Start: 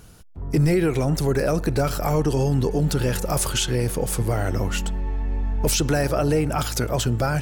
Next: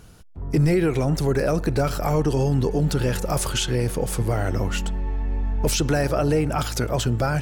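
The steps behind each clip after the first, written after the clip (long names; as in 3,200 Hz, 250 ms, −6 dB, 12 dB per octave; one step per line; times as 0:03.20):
high-shelf EQ 7,700 Hz −5.5 dB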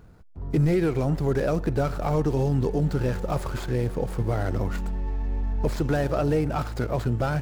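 running median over 15 samples
level −2.5 dB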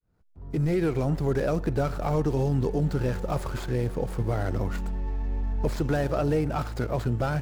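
fade in at the beginning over 0.87 s
level −1.5 dB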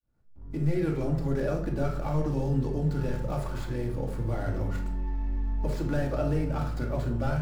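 rectangular room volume 860 cubic metres, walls furnished, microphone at 2.4 metres
level −7.5 dB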